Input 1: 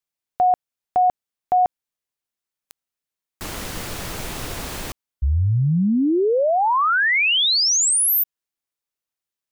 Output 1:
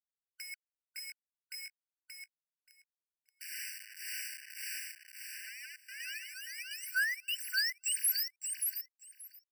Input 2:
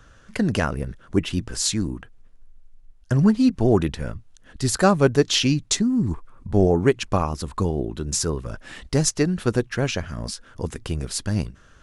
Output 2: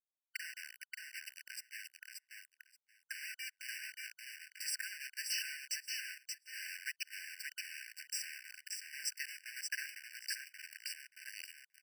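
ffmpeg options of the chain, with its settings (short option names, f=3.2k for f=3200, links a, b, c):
-filter_complex "[0:a]acrossover=split=470[a][b];[a]aeval=exprs='val(0)*(1-1/2+1/2*cos(2*PI*1.8*n/s))':c=same[c];[b]aeval=exprs='val(0)*(1-1/2-1/2*cos(2*PI*1.8*n/s))':c=same[d];[c][d]amix=inputs=2:normalize=0,acompressor=threshold=-34dB:ratio=2:attack=1.6:release=261:knee=1:detection=rms,acrusher=bits=5:mix=0:aa=0.000001,highpass=f=68:w=0.5412,highpass=f=68:w=1.3066,aeval=exprs='sgn(val(0))*max(abs(val(0))-0.00596,0)':c=same,aecho=1:1:579|1158|1737:0.631|0.0946|0.0142,afftfilt=real='re*eq(mod(floor(b*sr/1024/1500),2),1)':imag='im*eq(mod(floor(b*sr/1024/1500),2),1)':win_size=1024:overlap=0.75"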